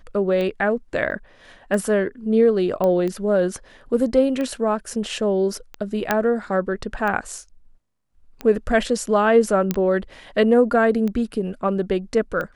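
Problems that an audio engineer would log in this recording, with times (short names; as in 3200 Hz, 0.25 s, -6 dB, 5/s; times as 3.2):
tick 45 rpm -16 dBFS
1.11–1.12 gap 7.2 ms
2.84 pop -12 dBFS
6.11 pop -4 dBFS
9.71 pop -7 dBFS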